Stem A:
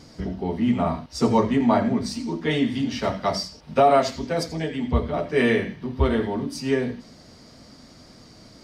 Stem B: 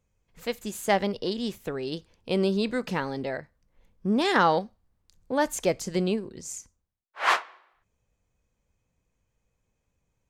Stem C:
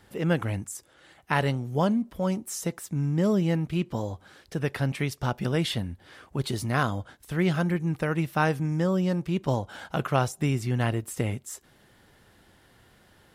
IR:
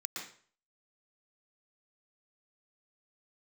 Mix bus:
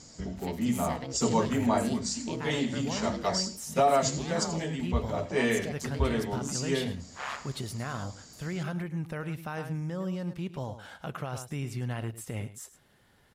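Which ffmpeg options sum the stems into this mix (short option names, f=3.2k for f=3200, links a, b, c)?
-filter_complex "[0:a]lowpass=f=7.2k:t=q:w=13,volume=-6.5dB[a];[1:a]acompressor=threshold=-32dB:ratio=2,aeval=exprs='val(0)*sin(2*PI*69*n/s)':c=same,volume=1dB,asplit=2[b][c];[c]volume=-23dB[d];[2:a]adelay=1100,volume=-5.5dB,asplit=2[e][f];[f]volume=-15dB[g];[b][e]amix=inputs=2:normalize=0,alimiter=level_in=2dB:limit=-24dB:level=0:latency=1:release=63,volume=-2dB,volume=0dB[h];[d][g]amix=inputs=2:normalize=0,aecho=0:1:106:1[i];[a][h][i]amix=inputs=3:normalize=0,equalizer=f=320:w=2.8:g=-3.5"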